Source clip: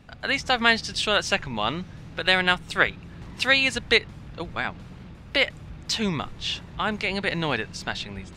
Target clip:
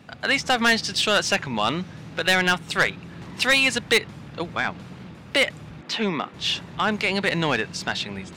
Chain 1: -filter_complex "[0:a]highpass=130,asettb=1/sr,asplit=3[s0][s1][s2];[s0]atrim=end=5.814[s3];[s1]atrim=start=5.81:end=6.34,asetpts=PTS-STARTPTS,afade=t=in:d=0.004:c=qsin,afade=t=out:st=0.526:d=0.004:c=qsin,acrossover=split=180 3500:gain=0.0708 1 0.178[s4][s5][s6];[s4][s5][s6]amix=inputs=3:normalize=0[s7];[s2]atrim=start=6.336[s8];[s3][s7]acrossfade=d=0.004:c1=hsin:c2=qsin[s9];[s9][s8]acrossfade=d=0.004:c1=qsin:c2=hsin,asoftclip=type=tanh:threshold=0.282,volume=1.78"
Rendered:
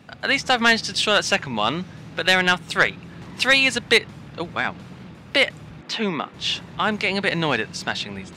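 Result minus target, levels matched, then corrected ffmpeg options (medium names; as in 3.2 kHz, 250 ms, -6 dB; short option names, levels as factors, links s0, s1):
saturation: distortion -5 dB
-filter_complex "[0:a]highpass=130,asettb=1/sr,asplit=3[s0][s1][s2];[s0]atrim=end=5.814[s3];[s1]atrim=start=5.81:end=6.34,asetpts=PTS-STARTPTS,afade=t=in:d=0.004:c=qsin,afade=t=out:st=0.526:d=0.004:c=qsin,acrossover=split=180 3500:gain=0.0708 1 0.178[s4][s5][s6];[s4][s5][s6]amix=inputs=3:normalize=0[s7];[s2]atrim=start=6.336[s8];[s3][s7]acrossfade=d=0.004:c1=hsin:c2=qsin[s9];[s9][s8]acrossfade=d=0.004:c1=qsin:c2=hsin,asoftclip=type=tanh:threshold=0.141,volume=1.78"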